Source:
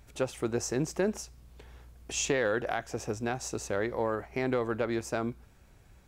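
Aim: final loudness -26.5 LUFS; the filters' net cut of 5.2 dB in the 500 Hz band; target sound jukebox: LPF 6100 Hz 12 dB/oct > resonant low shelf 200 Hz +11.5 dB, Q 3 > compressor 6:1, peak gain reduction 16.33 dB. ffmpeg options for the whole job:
-af "lowpass=6.1k,lowshelf=f=200:t=q:w=3:g=11.5,equalizer=f=500:t=o:g=-3,acompressor=threshold=-32dB:ratio=6,volume=10.5dB"

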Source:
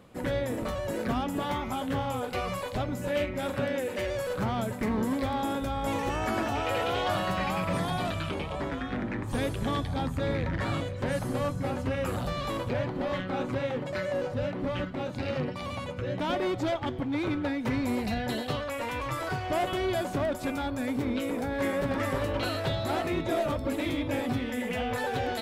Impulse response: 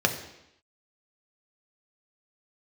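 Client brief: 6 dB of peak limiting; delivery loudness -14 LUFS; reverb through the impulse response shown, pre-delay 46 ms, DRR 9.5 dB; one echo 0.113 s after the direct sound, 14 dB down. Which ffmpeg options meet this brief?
-filter_complex "[0:a]alimiter=level_in=3dB:limit=-24dB:level=0:latency=1,volume=-3dB,aecho=1:1:113:0.2,asplit=2[a][b];[1:a]atrim=start_sample=2205,adelay=46[c];[b][c]afir=irnorm=-1:irlink=0,volume=-22.5dB[d];[a][d]amix=inputs=2:normalize=0,volume=20dB"

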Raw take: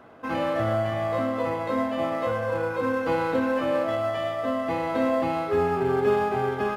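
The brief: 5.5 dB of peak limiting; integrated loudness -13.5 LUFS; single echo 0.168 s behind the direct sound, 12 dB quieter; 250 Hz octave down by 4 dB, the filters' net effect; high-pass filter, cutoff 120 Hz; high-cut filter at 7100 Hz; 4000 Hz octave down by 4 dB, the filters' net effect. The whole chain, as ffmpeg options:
-af "highpass=120,lowpass=7.1k,equalizer=f=250:t=o:g=-4.5,equalizer=f=4k:t=o:g=-5.5,alimiter=limit=-19dB:level=0:latency=1,aecho=1:1:168:0.251,volume=14.5dB"

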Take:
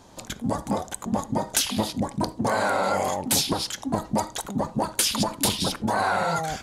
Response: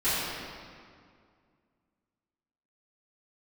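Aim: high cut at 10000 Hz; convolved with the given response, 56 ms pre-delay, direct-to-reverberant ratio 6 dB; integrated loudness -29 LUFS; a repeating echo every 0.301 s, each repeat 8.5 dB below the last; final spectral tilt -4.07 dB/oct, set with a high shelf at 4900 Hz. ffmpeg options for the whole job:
-filter_complex "[0:a]lowpass=10k,highshelf=f=4.9k:g=-5.5,aecho=1:1:301|602|903|1204:0.376|0.143|0.0543|0.0206,asplit=2[a][b];[1:a]atrim=start_sample=2205,adelay=56[c];[b][c]afir=irnorm=-1:irlink=0,volume=-19.5dB[d];[a][d]amix=inputs=2:normalize=0,volume=-4dB"

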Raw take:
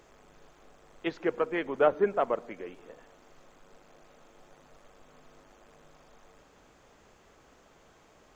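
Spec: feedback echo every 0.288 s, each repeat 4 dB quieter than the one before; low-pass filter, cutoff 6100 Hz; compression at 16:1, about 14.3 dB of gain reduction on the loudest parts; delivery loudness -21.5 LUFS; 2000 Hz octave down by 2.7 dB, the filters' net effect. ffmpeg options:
-af "lowpass=6.1k,equalizer=f=2k:t=o:g=-3.5,acompressor=threshold=-33dB:ratio=16,aecho=1:1:288|576|864|1152|1440|1728|2016|2304|2592:0.631|0.398|0.25|0.158|0.0994|0.0626|0.0394|0.0249|0.0157,volume=18dB"

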